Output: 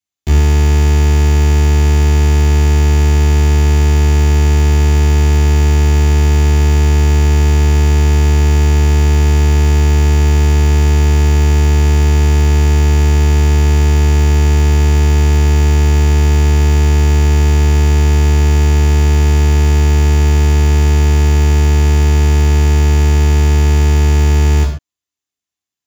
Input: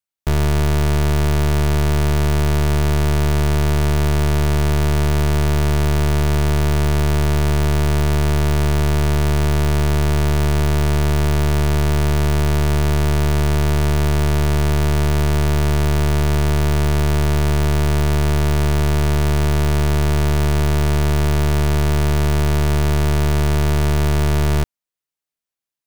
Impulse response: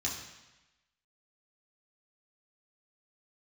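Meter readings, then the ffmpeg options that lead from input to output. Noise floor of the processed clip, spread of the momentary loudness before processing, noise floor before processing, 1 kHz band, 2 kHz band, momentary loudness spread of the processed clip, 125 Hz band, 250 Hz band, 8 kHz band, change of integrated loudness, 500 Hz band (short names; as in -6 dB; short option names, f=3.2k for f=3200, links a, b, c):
under -85 dBFS, 0 LU, under -85 dBFS, +2.0 dB, +3.0 dB, 0 LU, +7.0 dB, +3.0 dB, +6.0 dB, +7.0 dB, +2.0 dB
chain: -filter_complex "[1:a]atrim=start_sample=2205,atrim=end_sample=6615[a];[0:a][a]afir=irnorm=-1:irlink=0,volume=-1dB"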